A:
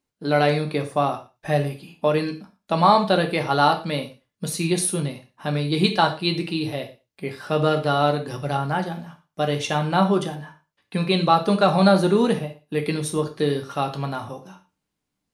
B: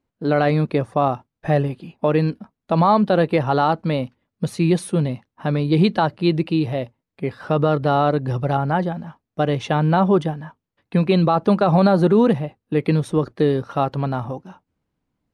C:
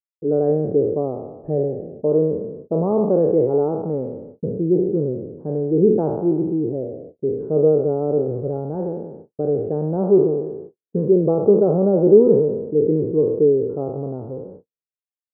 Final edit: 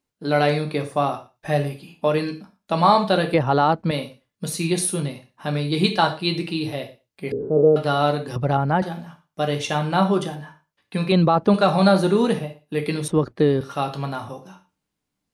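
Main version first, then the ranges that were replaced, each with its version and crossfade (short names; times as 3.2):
A
3.34–3.91 from B
7.32–7.76 from C
8.36–8.82 from B
11.12–11.54 from B
13.08–13.61 from B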